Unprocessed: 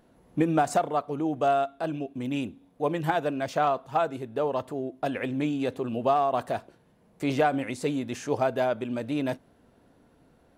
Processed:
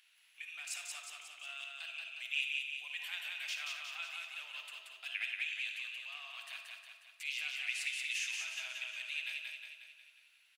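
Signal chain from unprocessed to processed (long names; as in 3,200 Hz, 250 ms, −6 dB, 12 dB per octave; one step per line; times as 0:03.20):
in parallel at 0 dB: downward compressor, threshold −35 dBFS, peak gain reduction 15.5 dB
on the sum: brickwall limiter −18.5 dBFS, peak gain reduction 8 dB
speech leveller within 4 dB 0.5 s
four-pole ladder high-pass 2,300 Hz, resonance 60%
repeating echo 180 ms, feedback 55%, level −3 dB
on a send at −6 dB: convolution reverb RT60 0.50 s, pre-delay 47 ms
on the sum: level +4 dB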